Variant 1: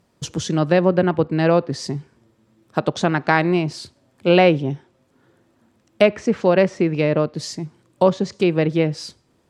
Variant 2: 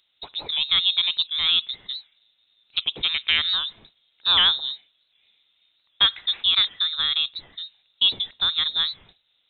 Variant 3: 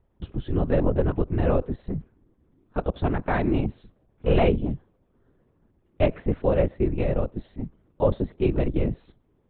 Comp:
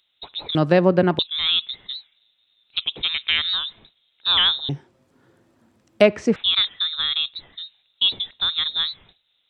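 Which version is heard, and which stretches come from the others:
2
0.55–1.19 s: from 1
4.69–6.36 s: from 1
not used: 3

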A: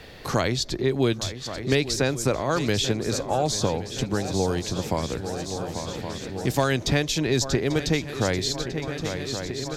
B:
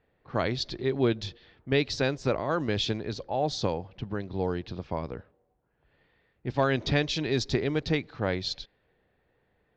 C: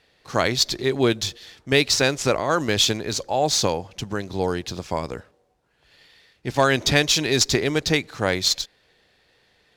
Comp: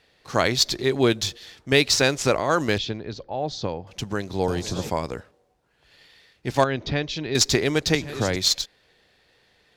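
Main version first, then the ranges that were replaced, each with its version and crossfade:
C
2.78–3.87 s: from B
4.48–4.90 s: from A
6.64–7.35 s: from B
7.95–8.36 s: from A

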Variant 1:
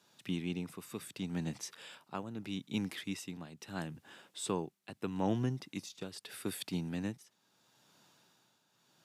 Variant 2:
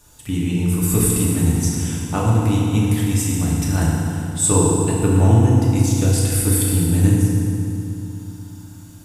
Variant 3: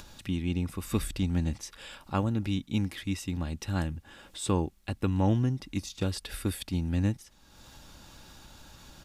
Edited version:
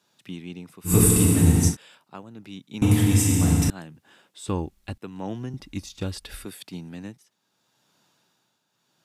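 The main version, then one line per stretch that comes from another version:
1
0.89–1.72 s: from 2, crossfade 0.10 s
2.82–3.70 s: from 2
4.48–4.98 s: from 3
5.54–6.45 s: from 3

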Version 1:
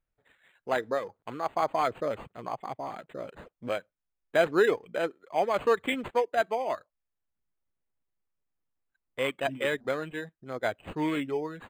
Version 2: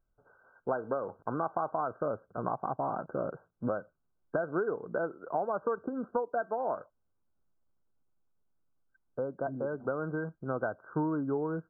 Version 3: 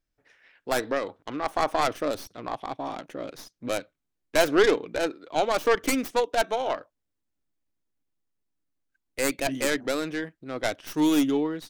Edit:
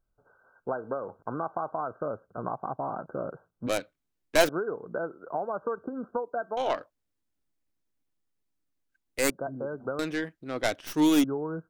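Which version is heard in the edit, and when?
2
3.67–4.49 s: from 3
6.57–9.30 s: from 3
9.99–11.24 s: from 3
not used: 1

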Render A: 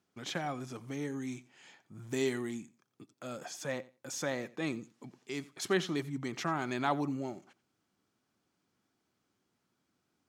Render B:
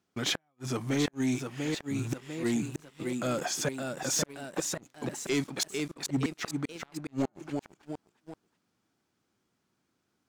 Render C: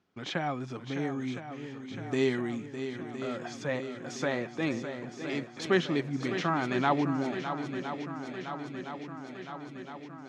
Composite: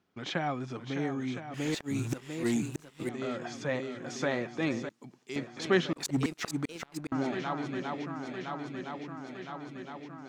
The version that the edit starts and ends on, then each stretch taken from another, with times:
C
1.54–3.09 s: from B
4.89–5.36 s: from A
5.93–7.12 s: from B

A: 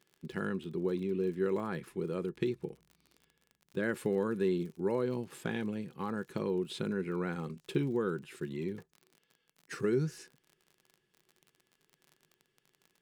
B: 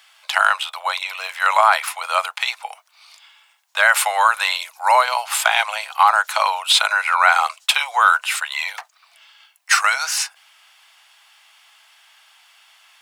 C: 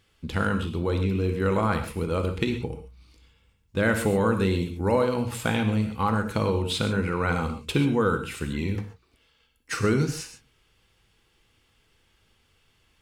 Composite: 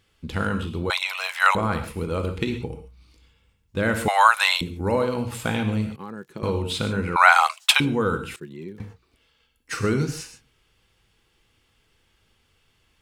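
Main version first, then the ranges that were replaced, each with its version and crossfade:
C
0.90–1.55 s: from B
4.08–4.61 s: from B
5.96–6.43 s: from A
7.16–7.80 s: from B
8.36–8.80 s: from A

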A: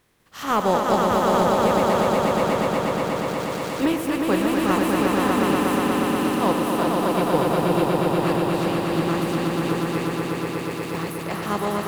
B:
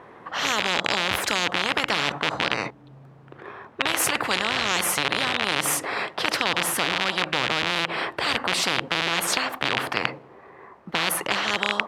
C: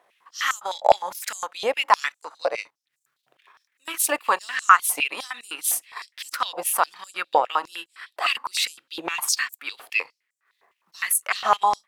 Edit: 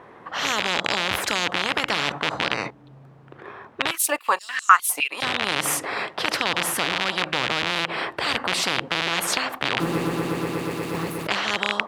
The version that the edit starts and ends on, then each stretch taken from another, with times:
B
3.91–5.22 s: from C
9.80–11.27 s: from A

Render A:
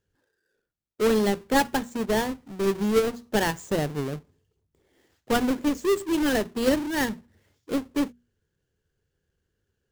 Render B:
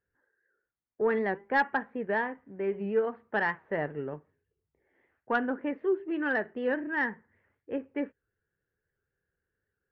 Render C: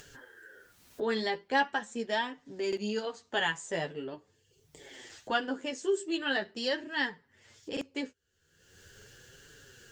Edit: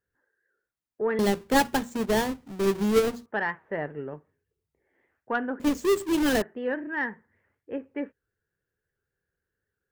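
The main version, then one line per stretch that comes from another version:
B
1.19–3.26 s: from A
5.60–6.42 s: from A
not used: C

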